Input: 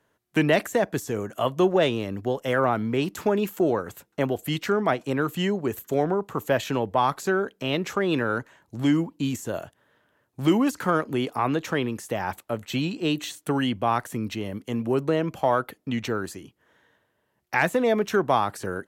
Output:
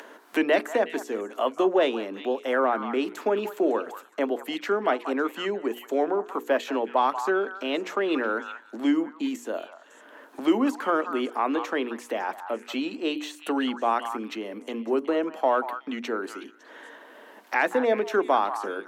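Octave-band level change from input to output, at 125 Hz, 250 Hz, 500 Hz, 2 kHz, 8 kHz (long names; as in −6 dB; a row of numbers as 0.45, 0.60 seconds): below −20 dB, −2.5 dB, −0.5 dB, −1.0 dB, −7.0 dB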